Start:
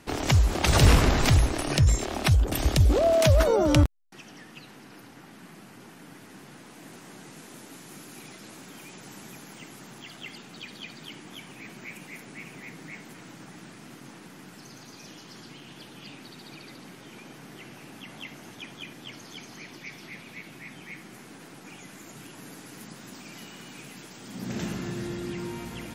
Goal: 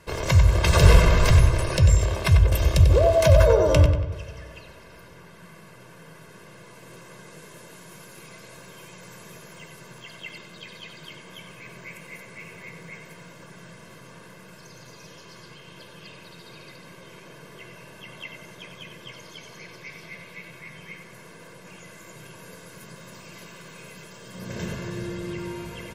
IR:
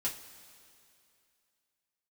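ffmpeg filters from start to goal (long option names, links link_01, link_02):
-filter_complex "[0:a]aecho=1:1:1.9:0.78,asplit=2[link_01][link_02];[link_02]adelay=94,lowpass=frequency=3900:poles=1,volume=-6.5dB,asplit=2[link_03][link_04];[link_04]adelay=94,lowpass=frequency=3900:poles=1,volume=0.48,asplit=2[link_05][link_06];[link_06]adelay=94,lowpass=frequency=3900:poles=1,volume=0.48,asplit=2[link_07][link_08];[link_08]adelay=94,lowpass=frequency=3900:poles=1,volume=0.48,asplit=2[link_09][link_10];[link_10]adelay=94,lowpass=frequency=3900:poles=1,volume=0.48,asplit=2[link_11][link_12];[link_12]adelay=94,lowpass=frequency=3900:poles=1,volume=0.48[link_13];[link_01][link_03][link_05][link_07][link_09][link_11][link_13]amix=inputs=7:normalize=0,asplit=2[link_14][link_15];[1:a]atrim=start_sample=2205,lowpass=3000[link_16];[link_15][link_16]afir=irnorm=-1:irlink=0,volume=-6.5dB[link_17];[link_14][link_17]amix=inputs=2:normalize=0,volume=-3dB"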